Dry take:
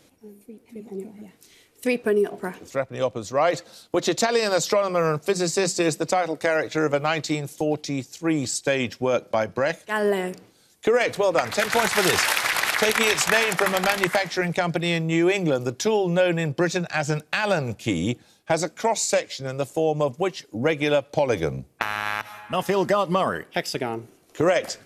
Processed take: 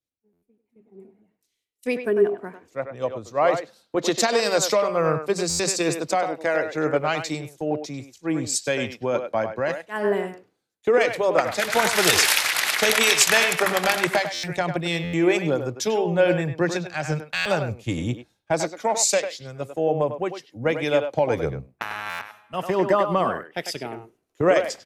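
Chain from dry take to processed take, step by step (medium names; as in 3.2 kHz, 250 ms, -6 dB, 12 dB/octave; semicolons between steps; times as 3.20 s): speakerphone echo 100 ms, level -6 dB; buffer glitch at 0.32/5.49/14.33/15.03/17.35/22.09 s, samples 512, times 8; three bands expanded up and down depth 100%; trim -1 dB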